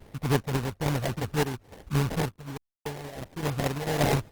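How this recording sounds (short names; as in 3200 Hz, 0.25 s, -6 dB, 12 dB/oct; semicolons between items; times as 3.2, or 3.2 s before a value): phasing stages 4, 3.6 Hz, lowest notch 310–4100 Hz; aliases and images of a low sample rate 1300 Hz, jitter 20%; random-step tremolo 3.5 Hz, depth 100%; Opus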